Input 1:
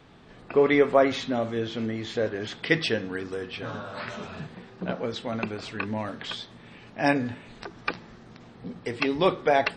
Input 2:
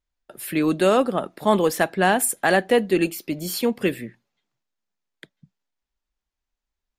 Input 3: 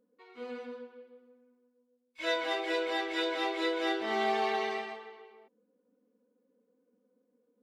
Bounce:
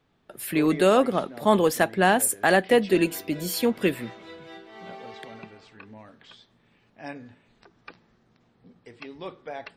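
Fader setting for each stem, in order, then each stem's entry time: -15.5 dB, -1.0 dB, -13.0 dB; 0.00 s, 0.00 s, 0.65 s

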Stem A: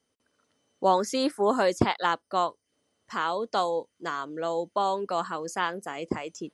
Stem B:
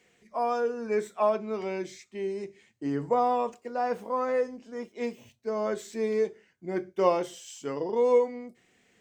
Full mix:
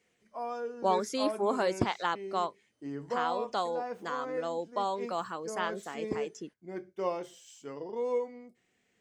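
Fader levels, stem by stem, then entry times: -5.5 dB, -9.0 dB; 0.00 s, 0.00 s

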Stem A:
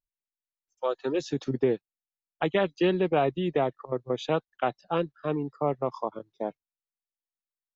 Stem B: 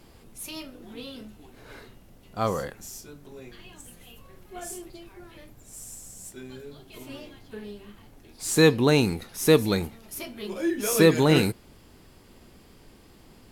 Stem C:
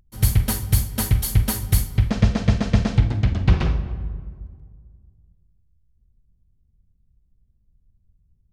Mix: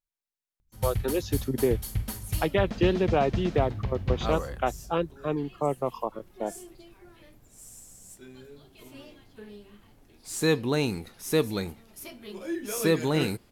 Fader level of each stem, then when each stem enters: 0.0 dB, -6.0 dB, -12.0 dB; 0.00 s, 1.85 s, 0.60 s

